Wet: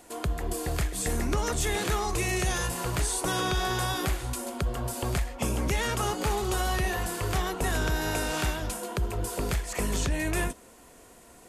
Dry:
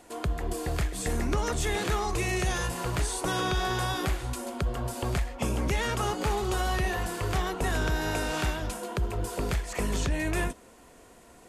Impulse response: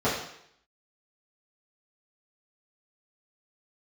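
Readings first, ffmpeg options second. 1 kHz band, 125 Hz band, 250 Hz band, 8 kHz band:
0.0 dB, 0.0 dB, 0.0 dB, +4.0 dB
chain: -af "highshelf=frequency=7300:gain=7.5"

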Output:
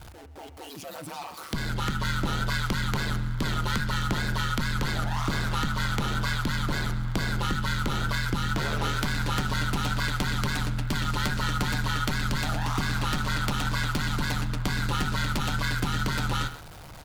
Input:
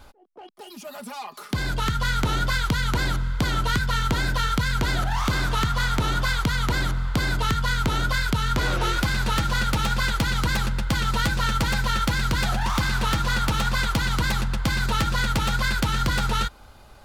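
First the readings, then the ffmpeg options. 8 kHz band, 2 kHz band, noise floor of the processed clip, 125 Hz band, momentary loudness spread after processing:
−4.0 dB, −4.5 dB, −44 dBFS, −2.5 dB, 5 LU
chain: -filter_complex "[0:a]aeval=exprs='val(0)+0.5*0.015*sgn(val(0))':channel_layout=same,asplit=2[link_01][link_02];[link_02]aecho=0:1:132:0.15[link_03];[link_01][link_03]amix=inputs=2:normalize=0,aeval=exprs='val(0)*sin(2*PI*75*n/s)':channel_layout=same,bandreject=frequency=88.79:width_type=h:width=4,bandreject=frequency=177.58:width_type=h:width=4,bandreject=frequency=266.37:width_type=h:width=4,bandreject=frequency=355.16:width_type=h:width=4,bandreject=frequency=443.95:width_type=h:width=4,bandreject=frequency=532.74:width_type=h:width=4,bandreject=frequency=621.53:width_type=h:width=4,bandreject=frequency=710.32:width_type=h:width=4,bandreject=frequency=799.11:width_type=h:width=4,bandreject=frequency=887.9:width_type=h:width=4,bandreject=frequency=976.69:width_type=h:width=4,bandreject=frequency=1065.48:width_type=h:width=4,bandreject=frequency=1154.27:width_type=h:width=4,bandreject=frequency=1243.06:width_type=h:width=4,bandreject=frequency=1331.85:width_type=h:width=4,bandreject=frequency=1420.64:width_type=h:width=4,bandreject=frequency=1509.43:width_type=h:width=4,bandreject=frequency=1598.22:width_type=h:width=4,bandreject=frequency=1687.01:width_type=h:width=4,bandreject=frequency=1775.8:width_type=h:width=4,bandreject=frequency=1864.59:width_type=h:width=4,bandreject=frequency=1953.38:width_type=h:width=4,bandreject=frequency=2042.17:width_type=h:width=4,bandreject=frequency=2130.96:width_type=h:width=4,bandreject=frequency=2219.75:width_type=h:width=4,bandreject=frequency=2308.54:width_type=h:width=4,bandreject=frequency=2397.33:width_type=h:width=4,bandreject=frequency=2486.12:width_type=h:width=4,bandreject=frequency=2574.91:width_type=h:width=4,bandreject=frequency=2663.7:width_type=h:width=4,bandreject=frequency=2752.49:width_type=h:width=4,bandreject=frequency=2841.28:width_type=h:width=4,bandreject=frequency=2930.07:width_type=h:width=4,volume=-2dB"

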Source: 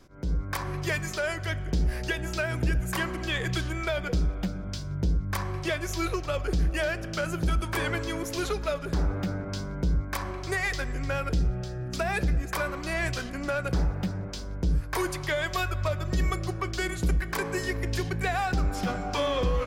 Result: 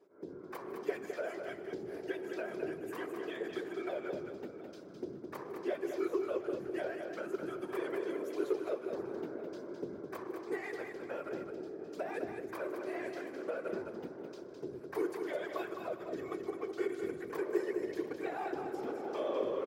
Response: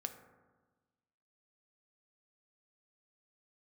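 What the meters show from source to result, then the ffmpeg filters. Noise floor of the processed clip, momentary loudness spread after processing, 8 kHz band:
−49 dBFS, 9 LU, below −20 dB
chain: -af "equalizer=frequency=6400:width=0.37:gain=-10.5,afftfilt=real='hypot(re,im)*cos(2*PI*random(0))':imag='hypot(re,im)*sin(2*PI*random(1))':win_size=512:overlap=0.75,highpass=frequency=380:width_type=q:width=4.6,aecho=1:1:154|210|398|722:0.133|0.501|0.119|0.126,volume=-6.5dB"

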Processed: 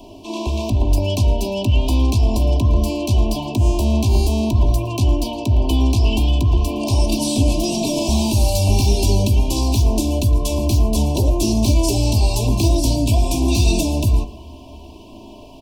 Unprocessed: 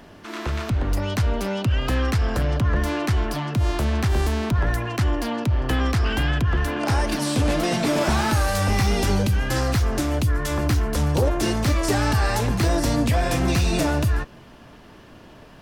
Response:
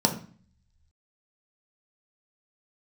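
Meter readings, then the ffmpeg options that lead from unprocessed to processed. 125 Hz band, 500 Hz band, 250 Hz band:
+5.0 dB, +2.5 dB, +4.5 dB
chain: -filter_complex "[0:a]aecho=1:1:3:0.72,acrossover=split=260|3000[link_01][link_02][link_03];[link_02]acompressor=threshold=-28dB:ratio=6[link_04];[link_01][link_04][link_03]amix=inputs=3:normalize=0,asuperstop=centerf=1600:order=12:qfactor=1.1,aecho=1:1:112:0.1,asplit=2[link_05][link_06];[1:a]atrim=start_sample=2205,adelay=15[link_07];[link_06][link_07]afir=irnorm=-1:irlink=0,volume=-23dB[link_08];[link_05][link_08]amix=inputs=2:normalize=0,volume=3.5dB"

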